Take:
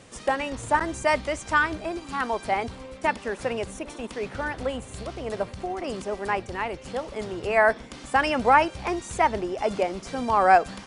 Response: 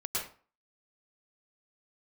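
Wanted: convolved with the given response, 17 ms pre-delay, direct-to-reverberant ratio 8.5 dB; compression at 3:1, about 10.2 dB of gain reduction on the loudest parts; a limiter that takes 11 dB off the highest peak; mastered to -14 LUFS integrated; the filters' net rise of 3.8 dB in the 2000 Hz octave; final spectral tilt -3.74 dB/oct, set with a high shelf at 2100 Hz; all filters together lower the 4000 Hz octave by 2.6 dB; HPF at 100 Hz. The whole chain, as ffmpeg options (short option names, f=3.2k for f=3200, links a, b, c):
-filter_complex "[0:a]highpass=100,equalizer=f=2k:t=o:g=8,highshelf=f=2.1k:g=-4.5,equalizer=f=4k:t=o:g=-3.5,acompressor=threshold=-25dB:ratio=3,alimiter=limit=-23dB:level=0:latency=1,asplit=2[a][b];[1:a]atrim=start_sample=2205,adelay=17[c];[b][c]afir=irnorm=-1:irlink=0,volume=-13.5dB[d];[a][d]amix=inputs=2:normalize=0,volume=19.5dB"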